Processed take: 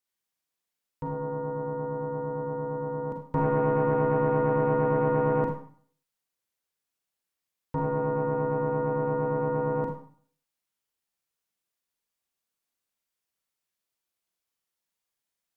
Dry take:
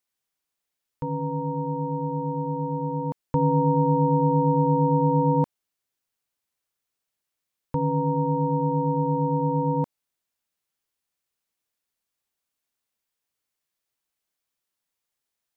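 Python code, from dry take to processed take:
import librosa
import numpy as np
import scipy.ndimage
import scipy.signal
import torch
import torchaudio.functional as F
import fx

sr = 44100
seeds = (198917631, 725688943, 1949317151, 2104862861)

y = fx.tube_stage(x, sr, drive_db=15.0, bias=0.75)
y = fx.rev_schroeder(y, sr, rt60_s=0.52, comb_ms=33, drr_db=1.5)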